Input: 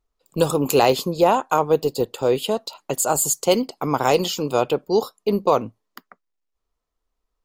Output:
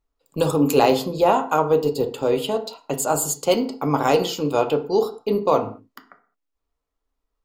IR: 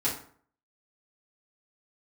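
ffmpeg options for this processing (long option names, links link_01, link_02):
-filter_complex "[0:a]asplit=2[link_01][link_02];[1:a]atrim=start_sample=2205,afade=type=out:start_time=0.27:duration=0.01,atrim=end_sample=12348,lowpass=4300[link_03];[link_02][link_03]afir=irnorm=-1:irlink=0,volume=-10.5dB[link_04];[link_01][link_04]amix=inputs=2:normalize=0,volume=-3.5dB"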